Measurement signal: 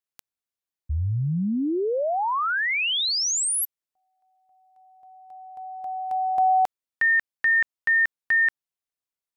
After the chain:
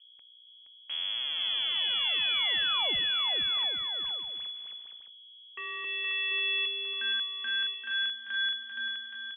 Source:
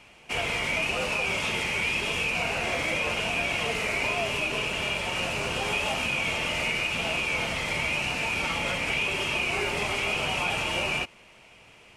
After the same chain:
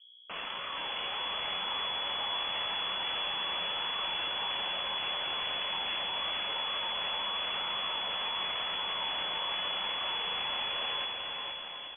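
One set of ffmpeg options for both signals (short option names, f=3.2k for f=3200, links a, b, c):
-filter_complex "[0:a]alimiter=level_in=2.5dB:limit=-24dB:level=0:latency=1,volume=-2.5dB,acrusher=bits=3:dc=4:mix=0:aa=0.000001,aeval=exprs='val(0)+0.00178*(sin(2*PI*60*n/s)+sin(2*PI*2*60*n/s)/2+sin(2*PI*3*60*n/s)/3+sin(2*PI*4*60*n/s)/4+sin(2*PI*5*60*n/s)/5)':c=same,asplit=2[a][b];[b]aecho=0:1:470|822.5|1087|1285|1434:0.631|0.398|0.251|0.158|0.1[c];[a][c]amix=inputs=2:normalize=0,lowpass=f=2.9k:t=q:w=0.5098,lowpass=f=2.9k:t=q:w=0.6013,lowpass=f=2.9k:t=q:w=0.9,lowpass=f=2.9k:t=q:w=2.563,afreqshift=-3400"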